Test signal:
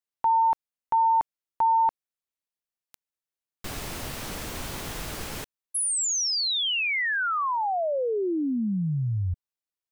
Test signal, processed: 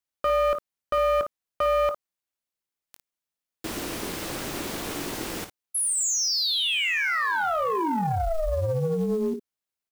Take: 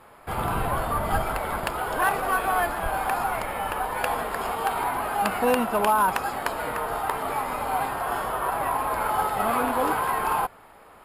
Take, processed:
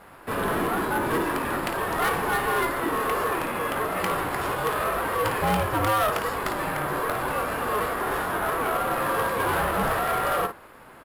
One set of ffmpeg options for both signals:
-filter_complex "[0:a]aeval=exprs='val(0)*sin(2*PI*320*n/s)':c=same,asplit=2[a][b];[b]aecho=0:1:21|55:0.224|0.282[c];[a][c]amix=inputs=2:normalize=0,asoftclip=type=tanh:threshold=-23dB,acrusher=bits=7:mode=log:mix=0:aa=0.000001,volume=5dB"

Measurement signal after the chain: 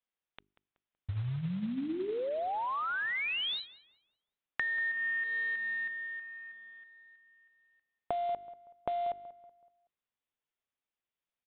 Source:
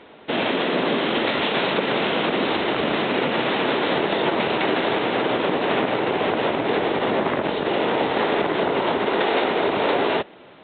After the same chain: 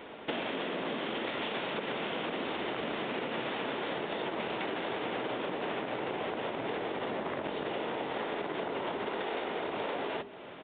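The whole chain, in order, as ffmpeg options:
-filter_complex "[0:a]bandreject=f=50:t=h:w=6,bandreject=f=100:t=h:w=6,bandreject=f=150:t=h:w=6,bandreject=f=200:t=h:w=6,bandreject=f=250:t=h:w=6,bandreject=f=300:t=h:w=6,bandreject=f=350:t=h:w=6,bandreject=f=400:t=h:w=6,aresample=8000,acrusher=bits=5:mode=log:mix=0:aa=0.000001,aresample=44100,acompressor=threshold=-32dB:ratio=12,asplit=2[a][b];[b]adelay=188,lowpass=f=2.4k:p=1,volume=-16dB,asplit=2[c][d];[d]adelay=188,lowpass=f=2.4k:p=1,volume=0.4,asplit=2[e][f];[f]adelay=188,lowpass=f=2.4k:p=1,volume=0.4,asplit=2[g][h];[h]adelay=188,lowpass=f=2.4k:p=1,volume=0.4[i];[a][c][e][g][i]amix=inputs=5:normalize=0"

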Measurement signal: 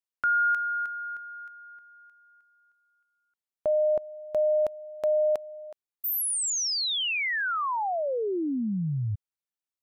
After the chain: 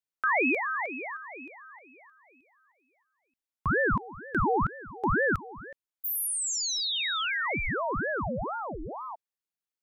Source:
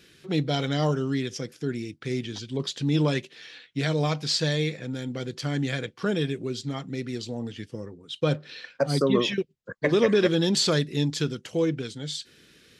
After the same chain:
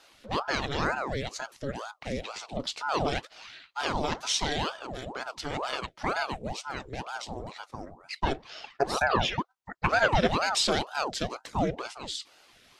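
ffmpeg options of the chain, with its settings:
-af "bass=f=250:g=-9,treble=f=4k:g=-1,aeval=exprs='val(0)*sin(2*PI*650*n/s+650*0.8/2.1*sin(2*PI*2.1*n/s))':c=same,volume=1.5dB"

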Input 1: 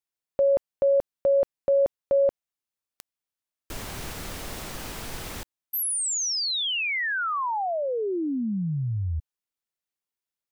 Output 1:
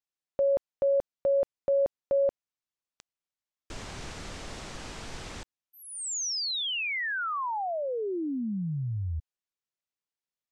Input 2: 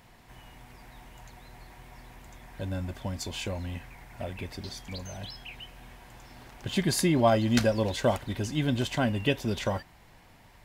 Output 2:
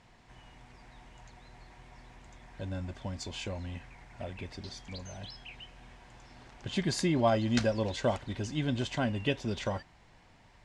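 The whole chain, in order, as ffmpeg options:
-af "lowpass=f=7.9k:w=0.5412,lowpass=f=7.9k:w=1.3066,volume=-4dB"

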